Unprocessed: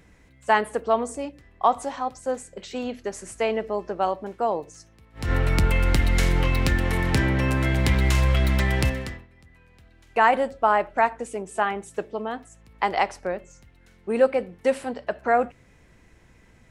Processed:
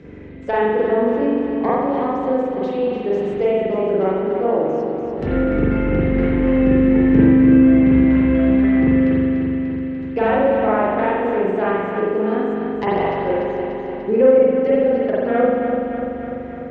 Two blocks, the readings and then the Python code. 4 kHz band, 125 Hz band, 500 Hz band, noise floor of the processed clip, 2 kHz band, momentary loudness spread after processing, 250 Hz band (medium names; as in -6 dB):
no reading, +0.5 dB, +9.5 dB, -29 dBFS, -0.5 dB, 11 LU, +15.5 dB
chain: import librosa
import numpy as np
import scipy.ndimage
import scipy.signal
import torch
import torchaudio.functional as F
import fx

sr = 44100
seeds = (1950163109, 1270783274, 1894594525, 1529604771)

p1 = fx.tracing_dist(x, sr, depth_ms=0.43)
p2 = fx.env_lowpass_down(p1, sr, base_hz=2000.0, full_db=-18.5)
p3 = fx.highpass(p2, sr, hz=170.0, slope=6)
p4 = fx.low_shelf_res(p3, sr, hz=580.0, db=8.5, q=1.5)
p5 = fx.notch(p4, sr, hz=1100.0, q=27.0)
p6 = fx.level_steps(p5, sr, step_db=14)
p7 = p5 + F.gain(torch.from_numpy(p6), 0.0).numpy()
p8 = fx.air_absorb(p7, sr, metres=180.0)
p9 = p8 + fx.echo_feedback(p8, sr, ms=294, feedback_pct=56, wet_db=-8, dry=0)
p10 = fx.rev_spring(p9, sr, rt60_s=1.2, pass_ms=(42,), chirp_ms=50, drr_db=-8.0)
p11 = fx.band_squash(p10, sr, depth_pct=40)
y = F.gain(torch.from_numpy(p11), -8.5).numpy()